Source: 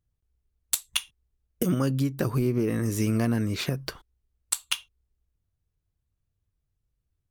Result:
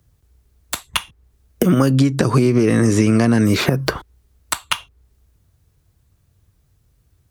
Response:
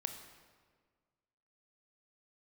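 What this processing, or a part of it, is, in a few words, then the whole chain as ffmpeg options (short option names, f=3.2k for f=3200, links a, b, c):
mastering chain: -filter_complex "[0:a]asettb=1/sr,asplit=3[a][b][c];[a]atrim=end=1.934[d];[b]atrim=start=1.93:end=3.45,asetpts=PTS-STARTPTS,afade=t=in:d=0.004:c=qsin,afade=t=out:st=1.516:d=0.004:c=qsin,lowpass=f=8.8k:w=0.5412,lowpass=f=8.8k:w=1.3066[e];[c]atrim=start=3.446[f];[d][e]acrossfade=d=0.004:c1=hsin:c2=qsin[g];[g][f]acrossfade=d=0.004:c1=qsin:c2=hsin,highpass=52,equalizer=f=2.8k:t=o:w=0.77:g=-2.5,acrossover=split=170|1400|3000[h][i][j][k];[h]acompressor=threshold=-39dB:ratio=4[l];[i]acompressor=threshold=-30dB:ratio=4[m];[j]acompressor=threshold=-46dB:ratio=4[n];[k]acompressor=threshold=-48dB:ratio=4[o];[l][m][n][o]amix=inputs=4:normalize=0,acompressor=threshold=-33dB:ratio=3,alimiter=level_in=22.5dB:limit=-1dB:release=50:level=0:latency=1,volume=-1dB"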